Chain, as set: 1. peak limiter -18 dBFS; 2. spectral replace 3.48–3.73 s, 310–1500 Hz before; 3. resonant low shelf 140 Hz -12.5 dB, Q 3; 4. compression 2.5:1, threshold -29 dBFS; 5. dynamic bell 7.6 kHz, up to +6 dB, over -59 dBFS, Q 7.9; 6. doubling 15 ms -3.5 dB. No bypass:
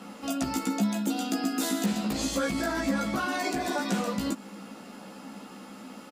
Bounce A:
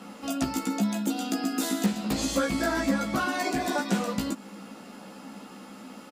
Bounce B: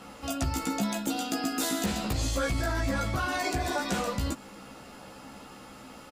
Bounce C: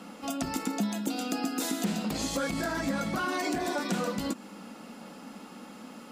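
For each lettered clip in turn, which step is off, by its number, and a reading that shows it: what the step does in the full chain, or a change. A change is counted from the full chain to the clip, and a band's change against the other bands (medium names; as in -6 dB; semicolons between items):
1, mean gain reduction 1.5 dB; 3, 125 Hz band +4.5 dB; 6, momentary loudness spread change -1 LU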